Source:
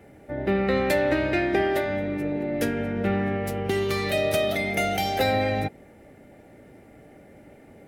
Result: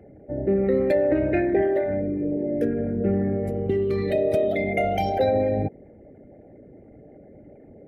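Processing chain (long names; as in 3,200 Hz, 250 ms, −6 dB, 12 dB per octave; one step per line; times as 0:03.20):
spectral envelope exaggerated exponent 2
level +2 dB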